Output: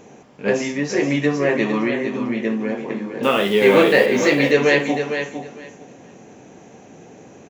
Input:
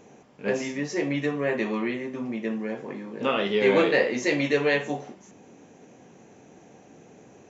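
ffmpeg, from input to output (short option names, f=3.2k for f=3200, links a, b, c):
-filter_complex "[0:a]asettb=1/sr,asplit=3[a][b][c];[a]atrim=end=3.234[d];[b]atrim=start=3.23:end=4.06,asetpts=PTS-STARTPTS,afade=t=in:d=0.004:c=qsin,afade=t=out:st=0.826:d=0.004:c=qsin,acrusher=bits=8:dc=4:mix=0:aa=0.000001[e];[c]atrim=start=4.056[f];[d][e]acrossfade=d=0.004:c1=hsin:c2=qsin[g];[g][f]acrossfade=d=0.004:c1=qsin:c2=hsin,aecho=1:1:456|912|1368:0.398|0.0677|0.0115,volume=7dB"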